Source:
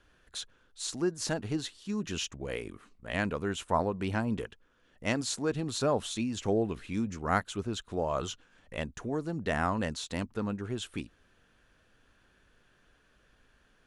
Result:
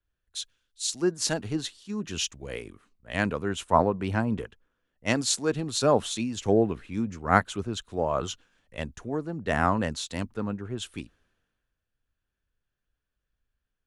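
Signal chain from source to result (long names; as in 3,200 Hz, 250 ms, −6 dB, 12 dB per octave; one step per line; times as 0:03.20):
multiband upward and downward expander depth 70%
level +3 dB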